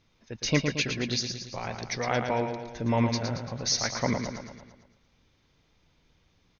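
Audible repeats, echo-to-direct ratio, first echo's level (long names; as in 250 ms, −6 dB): 6, −5.0 dB, −6.5 dB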